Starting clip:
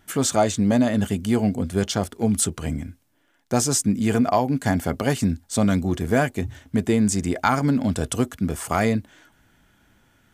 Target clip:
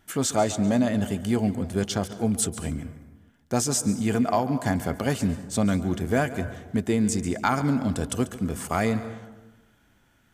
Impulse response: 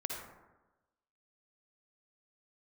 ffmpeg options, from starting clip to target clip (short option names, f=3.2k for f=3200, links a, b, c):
-filter_complex "[0:a]asplit=2[a][b];[1:a]atrim=start_sample=2205,adelay=141[c];[b][c]afir=irnorm=-1:irlink=0,volume=-14dB[d];[a][d]amix=inputs=2:normalize=0,volume=-3.5dB"